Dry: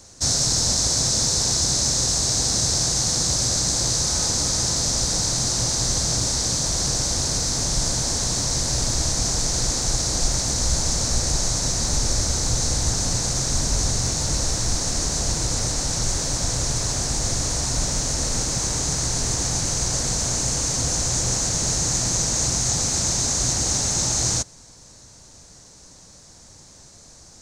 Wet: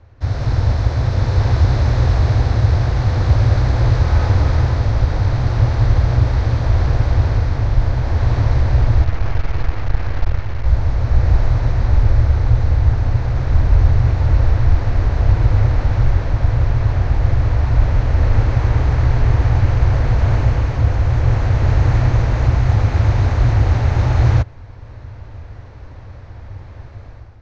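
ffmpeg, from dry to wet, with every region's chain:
ffmpeg -i in.wav -filter_complex "[0:a]asettb=1/sr,asplit=3[link_01][link_02][link_03];[link_01]atrim=end=9.044[link_04];[link_02]atrim=start=9.04:end=10.66,asetpts=PTS-STARTPTS,afade=type=in:duration=0.004:curve=qsin,afade=type=out:start_time=1.616:duration=0.004:curve=qsin,lowpass=4800,aemphasis=mode=production:type=50fm,aeval=exprs='max(val(0),0)':channel_layout=same[link_05];[link_03]atrim=start=10.656[link_06];[link_04][link_05]acrossfade=duration=0.004:curve1=hsin:curve2=qsin[link_07];[link_07][link_06]acrossfade=duration=0.004:curve1=qsin:curve2=hsin,lowpass=frequency=2500:width=0.5412,lowpass=frequency=2500:width=1.3066,lowshelf=frequency=130:width_type=q:width=3:gain=7.5,dynaudnorm=framelen=110:gausssize=7:maxgain=11.5dB,volume=-1dB" out.wav

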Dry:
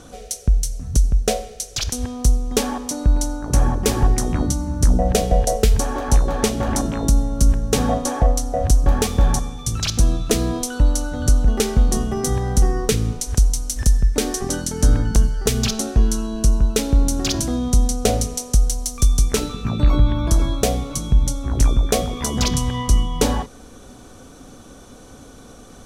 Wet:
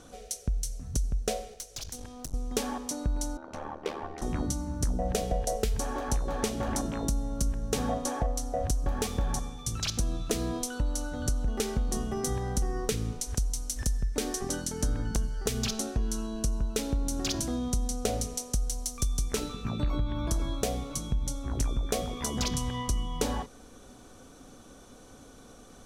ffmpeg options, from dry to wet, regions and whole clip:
ffmpeg -i in.wav -filter_complex "[0:a]asettb=1/sr,asplit=3[link_01][link_02][link_03];[link_01]atrim=end=1.544[link_04];[link_02]atrim=start=1.54:end=2.34,asetpts=PTS-STARTPTS,afade=type=in:duration=0.004:curve=qsin,afade=type=out:start_time=0.796:duration=0.004:curve=qsin,aeval=exprs='(tanh(10*val(0)+0.5)-tanh(0.5))/10':channel_layout=same,bandreject=frequency=50:width_type=h:width=6,bandreject=frequency=100:width_type=h:width=6,bandreject=frequency=150:width_type=h:width=6,bandreject=frequency=200:width_type=h:width=6,bandreject=frequency=250:width_type=h:width=6,bandreject=frequency=300:width_type=h:width=6,bandreject=frequency=350:width_type=h:width=6,bandreject=frequency=400:width_type=h:width=6,acrossover=split=780|4000[link_05][link_06][link_07];[link_05]acompressor=threshold=-29dB:ratio=4[link_08];[link_06]acompressor=threshold=-43dB:ratio=4[link_09];[link_07]acompressor=threshold=-29dB:ratio=4[link_10];[link_08][link_09][link_10]amix=inputs=3:normalize=0[link_11];[link_03]atrim=start=2.336[link_12];[link_04][link_11]acrossfade=duration=0.004:curve1=hsin:curve2=qsin[link_13];[link_13][link_12]acrossfade=duration=0.004:curve1=qsin:curve2=hsin,asettb=1/sr,asplit=3[link_14][link_15][link_16];[link_14]atrim=end=3.374[link_17];[link_15]atrim=start=3.37:end=4.22,asetpts=PTS-STARTPTS,afade=type=in:duration=0.004:curve=qsin,afade=type=out:start_time=0.846:duration=0.004:curve=qsin,acrossover=split=300 3800:gain=0.112 1 0.0794[link_18][link_19][link_20];[link_18][link_19][link_20]amix=inputs=3:normalize=0,bandreject=frequency=1700:width=18,aeval=exprs='val(0)*sin(2*PI*38*n/s)':channel_layout=same[link_21];[link_16]atrim=start=4.216[link_22];[link_17][link_21]acrossfade=duration=0.004:curve1=hsin:curve2=qsin[link_23];[link_23][link_22]acrossfade=duration=0.004:curve1=qsin:curve2=hsin,equalizer=frequency=82:width_type=o:width=2.6:gain=-3,acompressor=threshold=-16dB:ratio=6,volume=-8dB" out.wav

